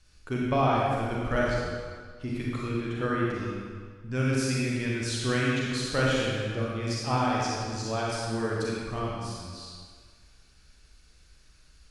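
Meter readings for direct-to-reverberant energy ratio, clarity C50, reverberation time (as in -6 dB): -5.0 dB, -3.0 dB, 1.7 s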